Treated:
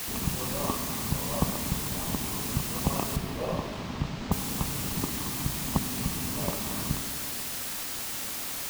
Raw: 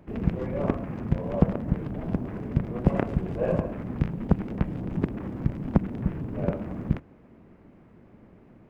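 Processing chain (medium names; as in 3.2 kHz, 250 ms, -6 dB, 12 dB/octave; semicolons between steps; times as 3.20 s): elliptic band-stop 1.2–2.6 kHz; resonant low shelf 750 Hz -9 dB, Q 1.5; in parallel at +1 dB: compression, threshold -44 dBFS, peak gain reduction 20 dB; on the sum: added noise white -37 dBFS; 3.16–4.32 s: distance through air 180 m; on a send at -7.5 dB: reverberation RT60 3.1 s, pre-delay 4 ms; on the sum: trim +1.5 dB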